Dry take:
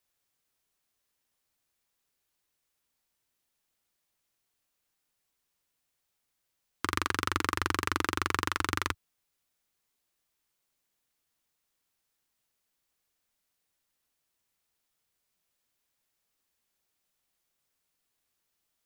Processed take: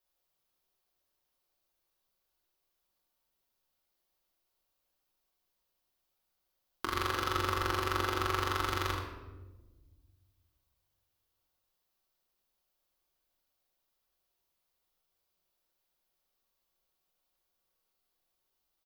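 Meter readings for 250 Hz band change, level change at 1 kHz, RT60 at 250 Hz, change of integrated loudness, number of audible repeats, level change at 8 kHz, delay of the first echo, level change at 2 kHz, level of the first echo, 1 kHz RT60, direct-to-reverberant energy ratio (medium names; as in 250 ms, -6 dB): -3.0 dB, -0.5 dB, 2.0 s, -1.5 dB, 1, -5.5 dB, 78 ms, -4.0 dB, -6.5 dB, 0.95 s, -2.0 dB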